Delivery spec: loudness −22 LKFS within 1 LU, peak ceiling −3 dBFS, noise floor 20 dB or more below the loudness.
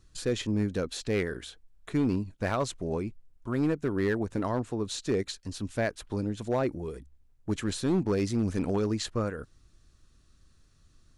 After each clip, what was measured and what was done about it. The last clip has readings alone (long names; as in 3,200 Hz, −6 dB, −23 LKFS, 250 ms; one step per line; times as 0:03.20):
share of clipped samples 0.9%; peaks flattened at −20.5 dBFS; integrated loudness −31.0 LKFS; sample peak −20.5 dBFS; target loudness −22.0 LKFS
→ clipped peaks rebuilt −20.5 dBFS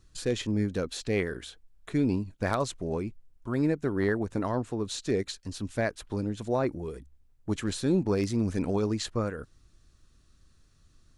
share of clipped samples 0.0%; integrated loudness −30.5 LKFS; sample peak −12.0 dBFS; target loudness −22.0 LKFS
→ level +8.5 dB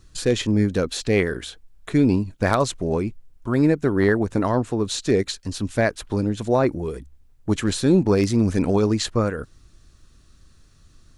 integrated loudness −22.0 LKFS; sample peak −3.5 dBFS; background noise floor −54 dBFS